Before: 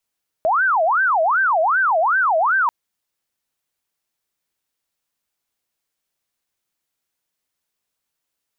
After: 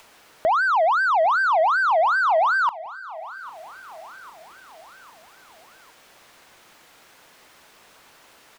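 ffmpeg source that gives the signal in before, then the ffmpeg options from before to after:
-f lavfi -i "aevalsrc='0.2*sin(2*PI*(1100.5*t-469.5/(2*PI*2.6)*sin(2*PI*2.6*t)))':d=2.24:s=44100"
-filter_complex "[0:a]acompressor=mode=upward:threshold=0.0794:ratio=2.5,asplit=2[s0][s1];[s1]highpass=f=720:p=1,volume=3.98,asoftclip=type=tanh:threshold=0.224[s2];[s0][s2]amix=inputs=2:normalize=0,lowpass=f=1100:p=1,volume=0.501,aecho=1:1:803|1606|2409|3212:0.126|0.0642|0.0327|0.0167"

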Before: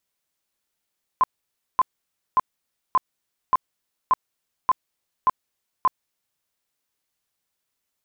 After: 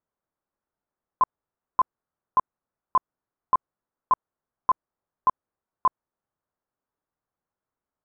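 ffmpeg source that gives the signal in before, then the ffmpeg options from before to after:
-f lavfi -i "aevalsrc='0.224*sin(2*PI*1030*mod(t,0.58))*lt(mod(t,0.58),27/1030)':d=5.22:s=44100"
-af "lowpass=f=1400:w=0.5412,lowpass=f=1400:w=1.3066"

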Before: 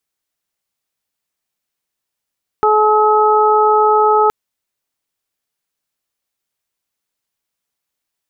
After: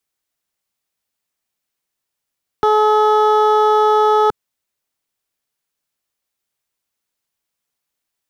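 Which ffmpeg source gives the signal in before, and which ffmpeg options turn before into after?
-f lavfi -i "aevalsrc='0.224*sin(2*PI*427*t)+0.237*sin(2*PI*854*t)+0.2*sin(2*PI*1281*t)':d=1.67:s=44100"
-filter_complex "[0:a]acrossover=split=170|1000[s0][s1][s2];[s2]volume=11.2,asoftclip=hard,volume=0.0891[s3];[s0][s1][s3]amix=inputs=3:normalize=0"

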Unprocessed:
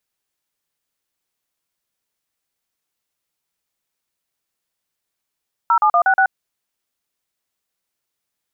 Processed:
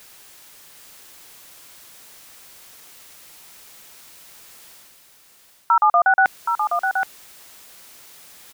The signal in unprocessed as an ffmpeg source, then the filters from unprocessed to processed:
-f lavfi -i "aevalsrc='0.211*clip(min(mod(t,0.12),0.079-mod(t,0.12))/0.002,0,1)*(eq(floor(t/0.12),0)*(sin(2*PI*941*mod(t,0.12))+sin(2*PI*1336*mod(t,0.12)))+eq(floor(t/0.12),1)*(sin(2*PI*852*mod(t,0.12))+sin(2*PI*1209*mod(t,0.12)))+eq(floor(t/0.12),2)*(sin(2*PI*697*mod(t,0.12))+sin(2*PI*1209*mod(t,0.12)))+eq(floor(t/0.12),3)*(sin(2*PI*770*mod(t,0.12))+sin(2*PI*1477*mod(t,0.12)))+eq(floor(t/0.12),4)*(sin(2*PI*770*mod(t,0.12))+sin(2*PI*1477*mod(t,0.12))))':d=0.6:s=44100"
-af "lowshelf=f=360:g=-4,areverse,acompressor=mode=upward:threshold=0.1:ratio=2.5,areverse,aecho=1:1:773:0.501"

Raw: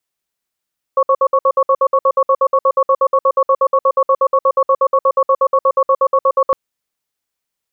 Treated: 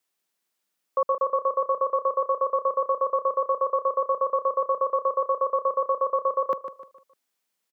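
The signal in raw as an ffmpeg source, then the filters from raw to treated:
-f lavfi -i "aevalsrc='0.266*(sin(2*PI*533*t)+sin(2*PI*1110*t))*clip(min(mod(t,0.12),0.06-mod(t,0.12))/0.005,0,1)':d=5.56:s=44100"
-filter_complex "[0:a]highpass=f=160:w=0.5412,highpass=f=160:w=1.3066,alimiter=limit=0.178:level=0:latency=1:release=234,asplit=2[s0][s1];[s1]aecho=0:1:151|302|453|604:0.299|0.11|0.0409|0.0151[s2];[s0][s2]amix=inputs=2:normalize=0"

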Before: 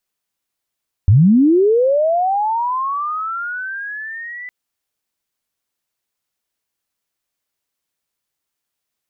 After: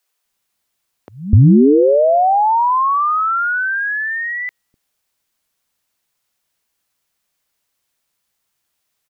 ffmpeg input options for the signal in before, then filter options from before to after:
-f lavfi -i "aevalsrc='pow(10,(-6-22*t/3.41)/20)*sin(2*PI*(85*t+1915*t*t/(2*3.41)))':d=3.41:s=44100"
-filter_complex "[0:a]acrossover=split=350[s0][s1];[s0]adelay=250[s2];[s2][s1]amix=inputs=2:normalize=0,asplit=2[s3][s4];[s4]acompressor=threshold=0.0794:ratio=6,volume=1.33[s5];[s3][s5]amix=inputs=2:normalize=0"

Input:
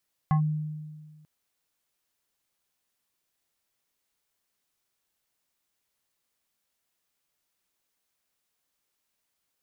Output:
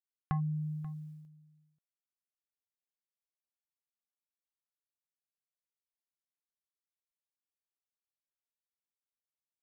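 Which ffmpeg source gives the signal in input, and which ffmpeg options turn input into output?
-f lavfi -i "aevalsrc='0.126*pow(10,-3*t/1.64)*sin(2*PI*153*t+0.61*clip(1-t/0.1,0,1)*sin(2*PI*6.07*153*t))':d=0.94:s=44100"
-af "agate=range=0.0224:threshold=0.00355:ratio=3:detection=peak,acompressor=threshold=0.02:ratio=2.5,aecho=1:1:535:0.119"

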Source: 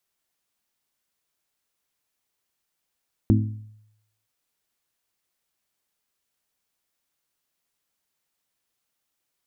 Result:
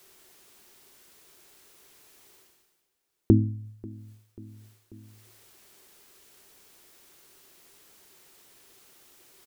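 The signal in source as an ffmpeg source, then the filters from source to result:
-f lavfi -i "aevalsrc='0.188*pow(10,-3*t/0.8)*sin(2*PI*107*t)+0.15*pow(10,-3*t/0.492)*sin(2*PI*214*t)+0.119*pow(10,-3*t/0.433)*sin(2*PI*256.8*t)+0.0944*pow(10,-3*t/0.371)*sin(2*PI*321*t)':d=0.97:s=44100"
-af "aecho=1:1:539|1078|1617:0.0708|0.0269|0.0102,areverse,acompressor=mode=upward:threshold=0.0126:ratio=2.5,areverse,equalizer=f=380:w=3.4:g=11.5"

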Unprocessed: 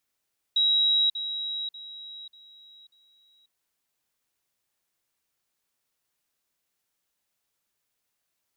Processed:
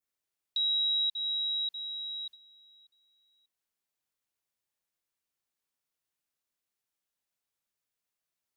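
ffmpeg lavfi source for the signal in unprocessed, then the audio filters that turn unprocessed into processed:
-f lavfi -i "aevalsrc='pow(10,(-19-10*floor(t/0.59))/20)*sin(2*PI*3850*t)*clip(min(mod(t,0.59),0.54-mod(t,0.59))/0.005,0,1)':d=2.95:s=44100"
-af "acompressor=threshold=0.0178:ratio=3,adynamicequalizer=threshold=0.00501:dfrequency=3600:dqfactor=0.92:tfrequency=3600:tqfactor=0.92:attack=5:release=100:ratio=0.375:range=2:mode=boostabove:tftype=bell,agate=range=0.355:threshold=0.00447:ratio=16:detection=peak"

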